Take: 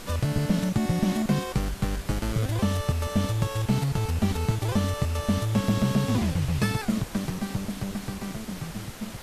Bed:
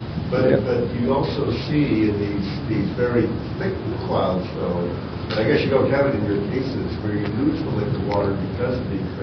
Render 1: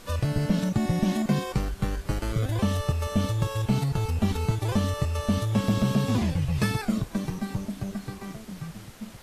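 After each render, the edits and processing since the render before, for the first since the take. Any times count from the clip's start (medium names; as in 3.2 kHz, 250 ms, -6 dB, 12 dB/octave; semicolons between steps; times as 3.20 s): noise print and reduce 7 dB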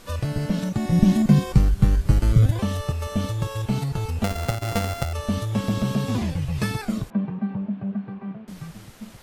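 0.92–2.51 s: tone controls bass +12 dB, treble +2 dB; 4.24–5.13 s: sorted samples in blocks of 64 samples; 7.10–8.48 s: cabinet simulation 150–2300 Hz, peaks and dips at 200 Hz +9 dB, 320 Hz -7 dB, 1.3 kHz -4 dB, 2 kHz -8 dB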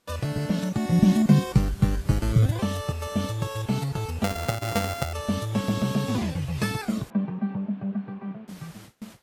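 high-pass 120 Hz 6 dB/octave; gate with hold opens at -33 dBFS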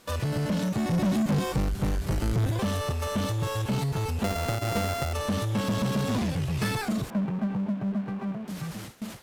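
saturation -21.5 dBFS, distortion -8 dB; power-law waveshaper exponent 0.7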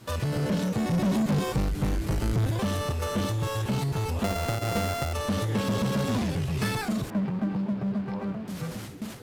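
add bed -20 dB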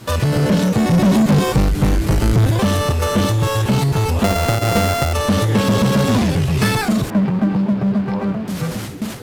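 trim +11.5 dB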